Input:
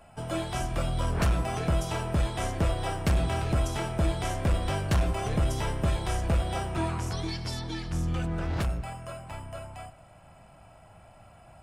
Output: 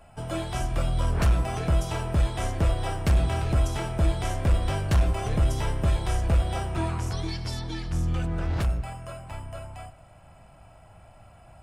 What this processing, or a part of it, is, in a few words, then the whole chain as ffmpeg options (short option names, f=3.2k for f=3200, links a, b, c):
low shelf boost with a cut just above: -af "lowshelf=f=110:g=6,equalizer=f=190:t=o:w=0.77:g=-2"